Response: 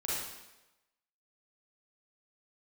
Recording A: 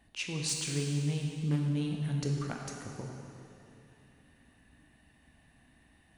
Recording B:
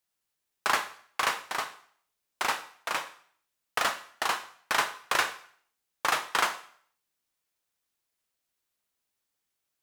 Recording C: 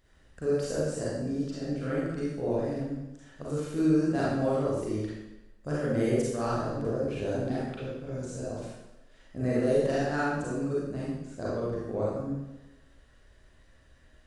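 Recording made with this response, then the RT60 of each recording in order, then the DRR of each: C; 3.0, 0.55, 1.0 s; 0.5, 9.0, -7.5 dB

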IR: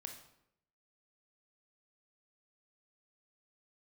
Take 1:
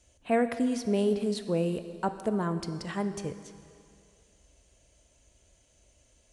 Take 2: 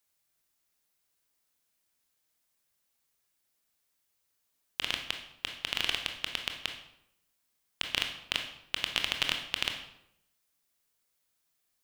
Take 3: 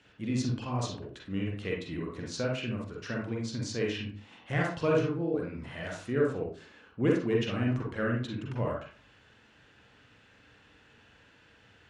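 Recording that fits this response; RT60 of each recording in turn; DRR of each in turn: 2; 2.4, 0.75, 0.40 s; 9.5, 3.5, -2.5 dB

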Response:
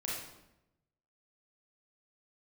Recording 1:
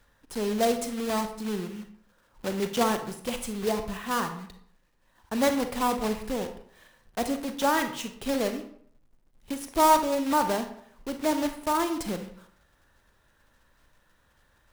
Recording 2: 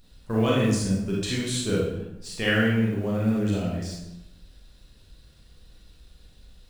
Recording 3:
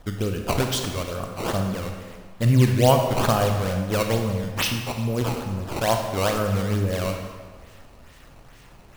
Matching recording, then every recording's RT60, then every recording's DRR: 2; 0.60, 0.90, 1.5 s; 7.0, -5.5, 3.5 dB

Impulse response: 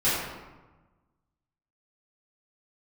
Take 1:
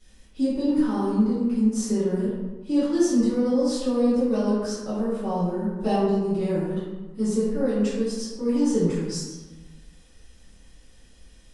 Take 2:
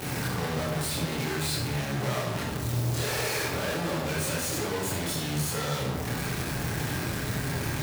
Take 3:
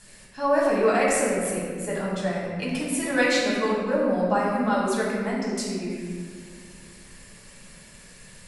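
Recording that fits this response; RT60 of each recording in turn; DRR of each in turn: 1; 1.2, 0.90, 1.8 s; -12.0, -6.5, -6.0 dB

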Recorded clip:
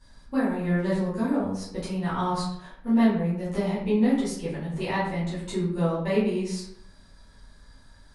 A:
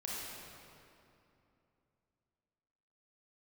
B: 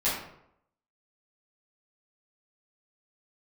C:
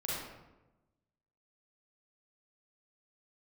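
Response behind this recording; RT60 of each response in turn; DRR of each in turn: B; 2.8, 0.75, 1.0 s; -6.0, -11.5, -7.0 dB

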